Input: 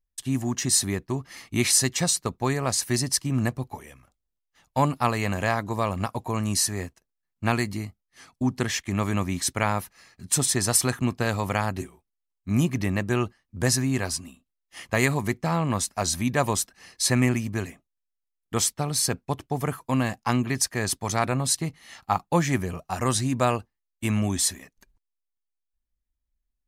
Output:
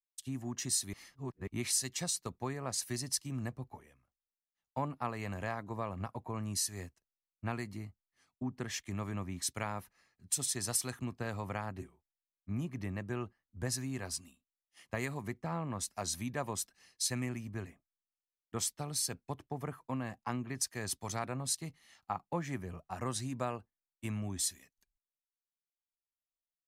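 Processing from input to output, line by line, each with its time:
0.93–1.47 s: reverse
whole clip: compression 3:1, threshold -27 dBFS; three bands expanded up and down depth 70%; trim -8.5 dB

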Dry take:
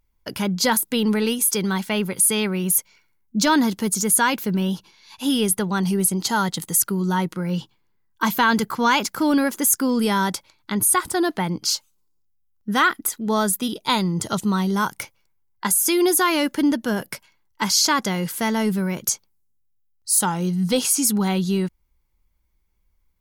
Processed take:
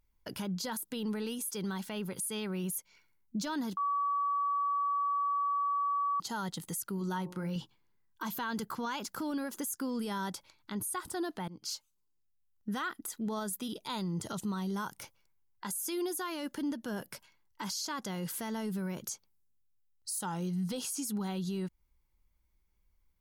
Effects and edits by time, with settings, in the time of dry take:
3.77–6.20 s: bleep 1.14 kHz -8.5 dBFS
6.96–7.56 s: de-hum 60.05 Hz, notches 19
11.48–12.69 s: fade in, from -15.5 dB
whole clip: dynamic bell 2.2 kHz, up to -6 dB, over -45 dBFS, Q 4.2; compression 4:1, threshold -26 dBFS; peak limiter -22.5 dBFS; trim -5.5 dB

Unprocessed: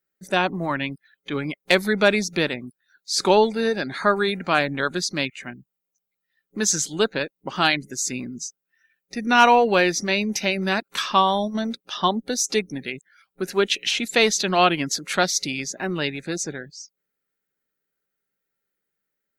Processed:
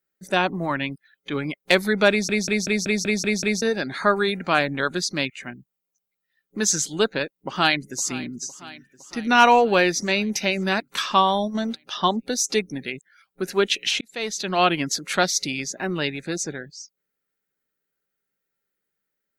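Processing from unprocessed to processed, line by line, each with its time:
2.10 s: stutter in place 0.19 s, 8 plays
7.36–8.32 s: echo throw 510 ms, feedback 70%, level -18 dB
14.01–14.75 s: fade in

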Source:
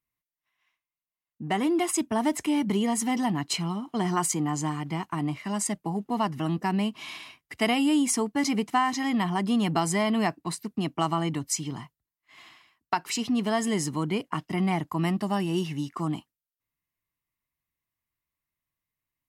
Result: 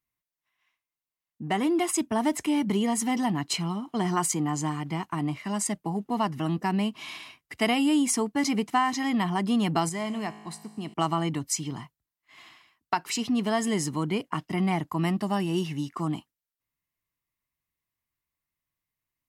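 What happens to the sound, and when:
9.89–10.94 s: feedback comb 53 Hz, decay 1.5 s

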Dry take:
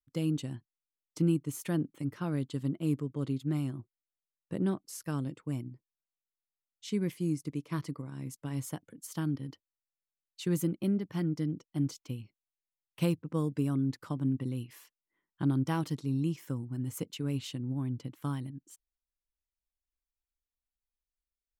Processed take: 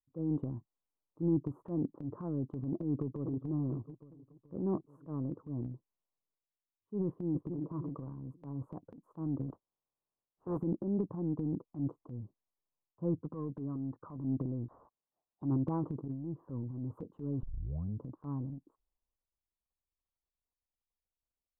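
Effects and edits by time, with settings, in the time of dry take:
2.79–3.51 s: echo throw 430 ms, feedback 50%, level -14.5 dB
7.05–7.60 s: echo throw 290 ms, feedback 35%, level -12.5 dB
9.48–10.57 s: spectral contrast reduction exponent 0.42
13.21–14.16 s: rippled Chebyshev low-pass 5.4 kHz, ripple 6 dB
14.68–15.42 s: frequency inversion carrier 3.9 kHz
16.08–16.49 s: fade in, from -15 dB
17.43 s: tape start 0.58 s
whole clip: elliptic low-pass 1.1 kHz, stop band 50 dB; dynamic bell 380 Hz, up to +4 dB, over -42 dBFS, Q 1.6; transient shaper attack -8 dB, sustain +9 dB; trim -3 dB

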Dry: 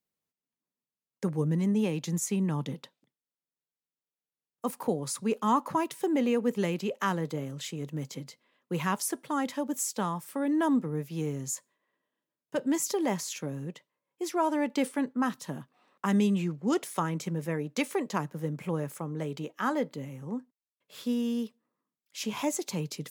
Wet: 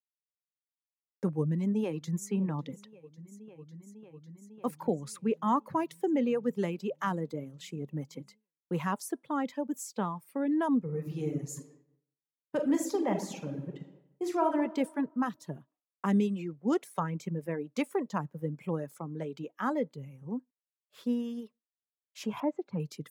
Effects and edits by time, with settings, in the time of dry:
1.27–2.29 s: echo throw 550 ms, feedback 85%, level -16.5 dB
10.80–14.58 s: reverb throw, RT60 1.5 s, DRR 0.5 dB
22.40–22.80 s: low-pass 1.8 kHz
whole clip: reverb removal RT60 1.7 s; treble shelf 2 kHz -10 dB; expander -54 dBFS

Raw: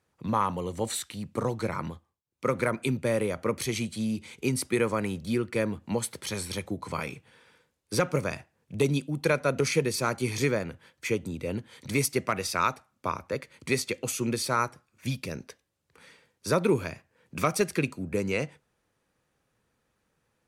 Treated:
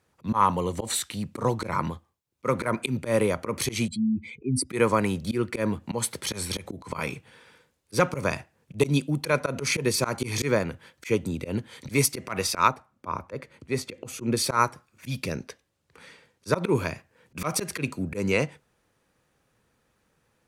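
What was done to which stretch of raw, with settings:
3.88–4.70 s: spectral contrast enhancement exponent 2.5
12.68–14.37 s: treble shelf 2 kHz -10.5 dB
15.25–16.75 s: treble shelf 10 kHz -6 dB
whole clip: dynamic bell 1 kHz, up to +5 dB, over -47 dBFS, Q 4.2; slow attack 107 ms; trim +5 dB

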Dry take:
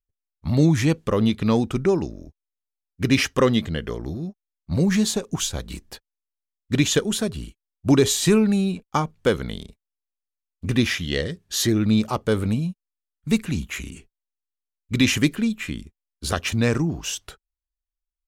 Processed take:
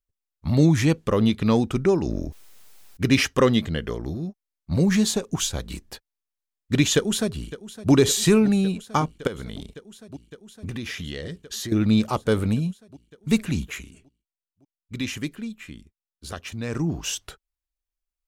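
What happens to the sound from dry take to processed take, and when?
2.00–3.03 s: decay stretcher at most 24 dB/s
6.95–7.92 s: echo throw 560 ms, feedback 85%, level -16 dB
9.27–11.72 s: compression, threshold -29 dBFS
13.65–16.90 s: dip -10.5 dB, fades 0.22 s

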